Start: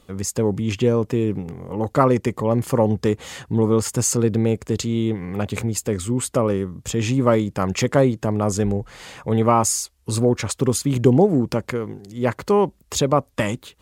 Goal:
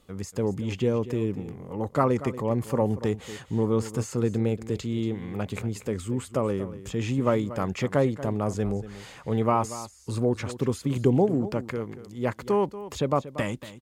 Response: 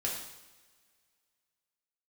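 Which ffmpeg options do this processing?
-filter_complex "[0:a]acrossover=split=3300[link_01][link_02];[link_02]acompressor=threshold=-34dB:ratio=4:attack=1:release=60[link_03];[link_01][link_03]amix=inputs=2:normalize=0,asplit=2[link_04][link_05];[link_05]aecho=0:1:235:0.188[link_06];[link_04][link_06]amix=inputs=2:normalize=0,volume=-6.5dB"

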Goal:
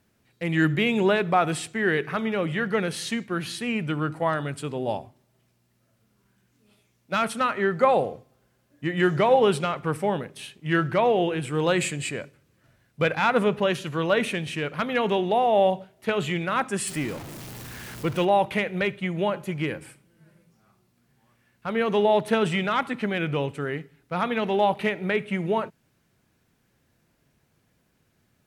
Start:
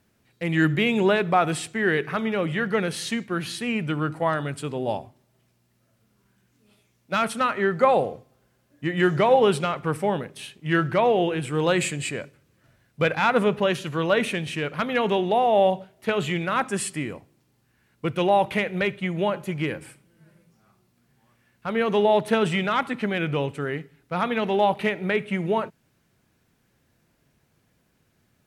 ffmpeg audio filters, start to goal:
ffmpeg -i in.wav -filter_complex "[0:a]asettb=1/sr,asplit=3[link_01][link_02][link_03];[link_01]atrim=end=16.874[link_04];[link_02]atrim=start=16.87:end=18.25,asetpts=PTS-STARTPTS,afade=type=in:duration=0.004:curve=qsin,afade=type=out:start_time=1.376:duration=0.004:curve=qsin,aeval=exprs='val(0)+0.5*0.0237*sgn(val(0))':channel_layout=same[link_05];[link_03]atrim=start=18.246[link_06];[link_04][link_05]acrossfade=duration=0.004:curve1=hsin:curve2=qsin[link_07];[link_07][link_06]acrossfade=duration=0.004:curve1=qsin:curve2=hsin,volume=-1dB" out.wav

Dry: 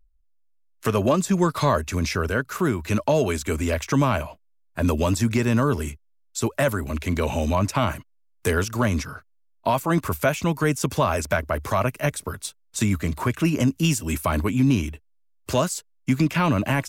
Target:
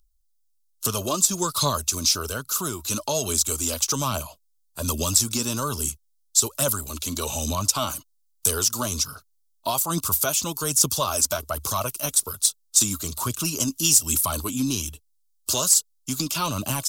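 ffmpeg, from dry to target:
ffmpeg -i in.wav -af "highshelf=frequency=1700:width_type=q:width=3:gain=-8.5,aexciter=amount=14.6:drive=8.6:freq=2800,aphaser=in_gain=1:out_gain=1:delay=4.1:decay=0.4:speed=1.2:type=triangular,volume=-8.5dB" out.wav

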